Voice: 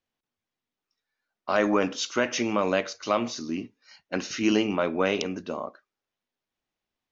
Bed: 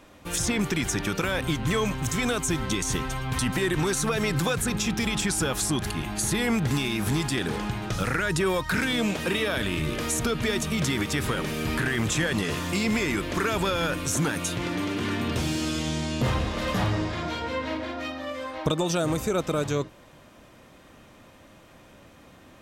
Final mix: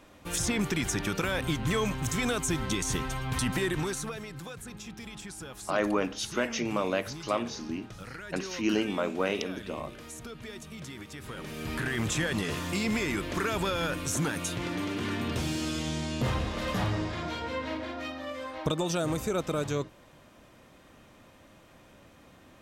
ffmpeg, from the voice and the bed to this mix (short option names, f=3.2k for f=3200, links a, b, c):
-filter_complex "[0:a]adelay=4200,volume=-4.5dB[a];[1:a]volume=9.5dB,afade=t=out:st=3.57:d=0.69:silence=0.211349,afade=t=in:st=11.21:d=0.81:silence=0.237137[b];[a][b]amix=inputs=2:normalize=0"